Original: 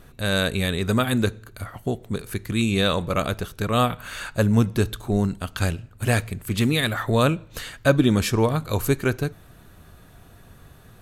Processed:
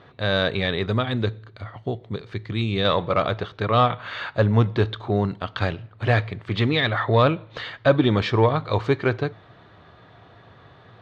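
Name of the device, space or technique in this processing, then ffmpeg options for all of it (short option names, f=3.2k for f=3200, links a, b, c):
overdrive pedal into a guitar cabinet: -filter_complex "[0:a]asettb=1/sr,asplit=3[a][b][c];[a]atrim=end=0.864[d];[b]atrim=start=0.86:end=2.85,asetpts=PTS-STARTPTS,afade=t=in:d=0.004:c=qsin,afade=t=out:st=1.986:d=0.004:c=qsin,equalizer=f=1.1k:w=0.35:g=-6.5[e];[c]atrim=start=2.846[f];[d][e]acrossfade=d=0.004:c1=hsin:c2=qsin[g];[g][f]acrossfade=d=0.004:c1=qsin:c2=hsin,asplit=2[h][i];[i]highpass=f=720:p=1,volume=13dB,asoftclip=type=tanh:threshold=-4dB[j];[h][j]amix=inputs=2:normalize=0,lowpass=f=4.3k:p=1,volume=-6dB,highpass=84,equalizer=f=110:t=q:w=4:g=8,equalizer=f=230:t=q:w=4:g=-4,equalizer=f=1.5k:t=q:w=4:g=-6,equalizer=f=2.6k:t=q:w=4:g=-8,lowpass=f=3.7k:w=0.5412,lowpass=f=3.7k:w=1.3066"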